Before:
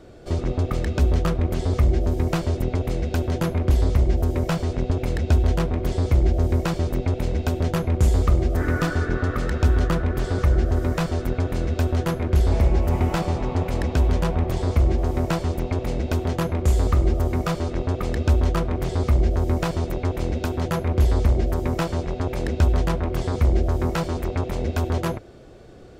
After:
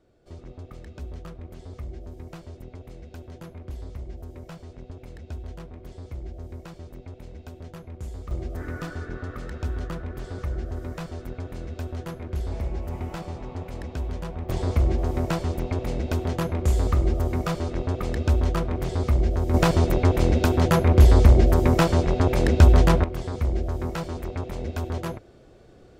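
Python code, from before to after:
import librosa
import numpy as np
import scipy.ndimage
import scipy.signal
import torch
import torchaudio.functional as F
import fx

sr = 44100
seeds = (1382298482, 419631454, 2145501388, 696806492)

y = fx.gain(x, sr, db=fx.steps((0.0, -18.0), (8.31, -11.0), (14.49, -2.5), (19.54, 5.0), (23.04, -6.0)))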